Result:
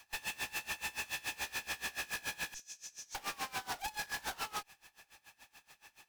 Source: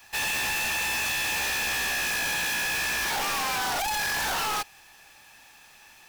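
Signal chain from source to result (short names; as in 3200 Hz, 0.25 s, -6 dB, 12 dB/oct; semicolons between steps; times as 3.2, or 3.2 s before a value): 2.54–3.15 band-pass 6300 Hz, Q 5.5; one-sided clip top -38.5 dBFS, bottom -28.5 dBFS; dB-linear tremolo 7 Hz, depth 23 dB; gain -3 dB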